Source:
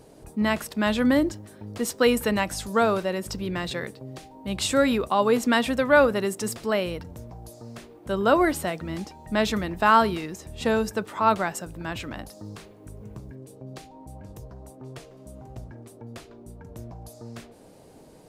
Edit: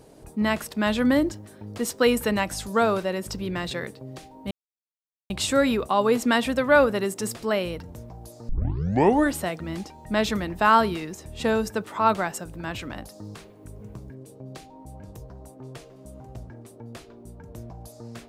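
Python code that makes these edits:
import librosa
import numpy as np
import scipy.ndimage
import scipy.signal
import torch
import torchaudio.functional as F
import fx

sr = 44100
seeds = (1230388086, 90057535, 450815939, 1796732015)

y = fx.edit(x, sr, fx.insert_silence(at_s=4.51, length_s=0.79),
    fx.tape_start(start_s=7.7, length_s=0.85), tone=tone)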